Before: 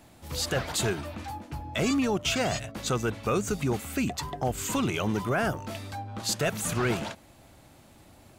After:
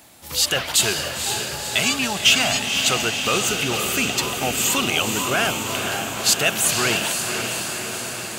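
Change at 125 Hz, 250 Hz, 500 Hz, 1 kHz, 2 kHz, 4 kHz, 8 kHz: -0.5 dB, +1.0 dB, +3.5 dB, +7.0 dB, +12.5 dB, +15.5 dB, +14.5 dB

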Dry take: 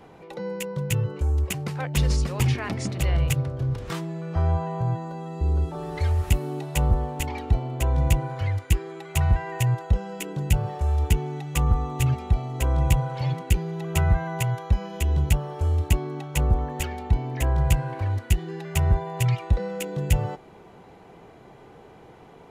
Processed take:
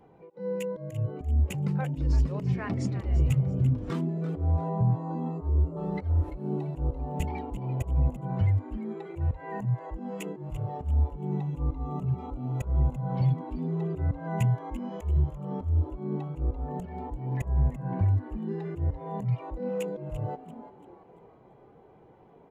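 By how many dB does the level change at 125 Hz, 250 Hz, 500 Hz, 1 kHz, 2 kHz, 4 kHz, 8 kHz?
-4.0 dB, -1.0 dB, -4.0 dB, -6.5 dB, -12.5 dB, under -15 dB, under -15 dB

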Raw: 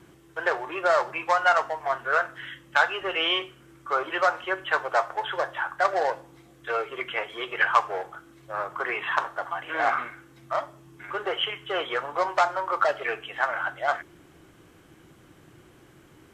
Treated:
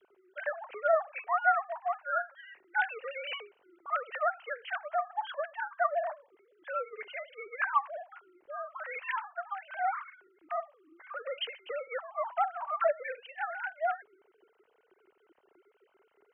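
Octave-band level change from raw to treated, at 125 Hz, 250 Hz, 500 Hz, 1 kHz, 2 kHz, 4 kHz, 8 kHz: under -35 dB, under -25 dB, -6.5 dB, -6.5 dB, -8.5 dB, -14.0 dB, no reading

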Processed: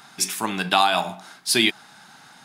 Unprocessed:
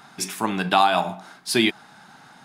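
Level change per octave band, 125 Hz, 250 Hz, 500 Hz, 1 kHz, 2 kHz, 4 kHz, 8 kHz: -3.0 dB, -3.0 dB, -2.5 dB, -1.5 dB, +1.5 dB, +4.0 dB, +5.5 dB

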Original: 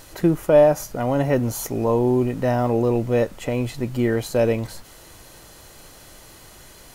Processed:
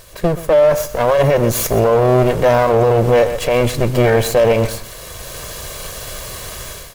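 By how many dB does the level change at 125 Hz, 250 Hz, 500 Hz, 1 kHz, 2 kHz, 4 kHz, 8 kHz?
+6.5 dB, +1.0 dB, +7.5 dB, +9.0 dB, +10.0 dB, +12.0 dB, +10.0 dB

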